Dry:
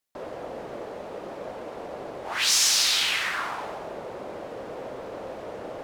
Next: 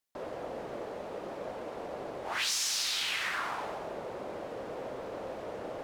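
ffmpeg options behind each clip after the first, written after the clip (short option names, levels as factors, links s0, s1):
-af "acompressor=threshold=0.0501:ratio=5,volume=0.708"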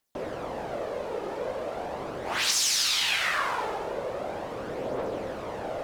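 -af "aphaser=in_gain=1:out_gain=1:delay=2.4:decay=0.37:speed=0.4:type=triangular,volume=2"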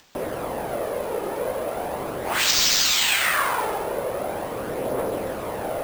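-af "acompressor=mode=upward:threshold=0.00447:ratio=2.5,acrusher=samples=4:mix=1:aa=0.000001,volume=1.88"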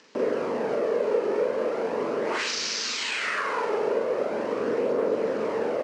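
-filter_complex "[0:a]acompressor=threshold=0.0501:ratio=6,highpass=230,equalizer=f=230:t=q:w=4:g=7,equalizer=f=440:t=q:w=4:g=9,equalizer=f=750:t=q:w=4:g=-8,equalizer=f=3500:t=q:w=4:g=-7,lowpass=f=6000:w=0.5412,lowpass=f=6000:w=1.3066,asplit=2[s0][s1];[s1]adelay=42,volume=0.794[s2];[s0][s2]amix=inputs=2:normalize=0"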